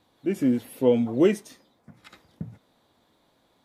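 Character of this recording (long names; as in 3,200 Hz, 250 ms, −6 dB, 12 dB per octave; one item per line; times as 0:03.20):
background noise floor −67 dBFS
spectral slope −6.5 dB per octave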